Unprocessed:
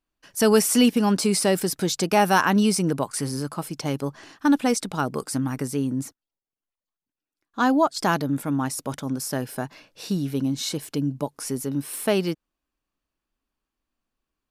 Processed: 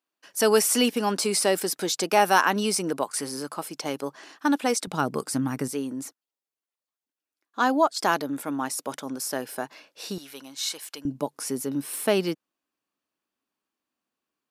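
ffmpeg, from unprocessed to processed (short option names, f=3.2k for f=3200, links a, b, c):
-af "asetnsamples=n=441:p=0,asendcmd='4.87 highpass f 140;5.68 highpass f 340;10.18 highpass f 920;11.05 highpass f 210',highpass=340"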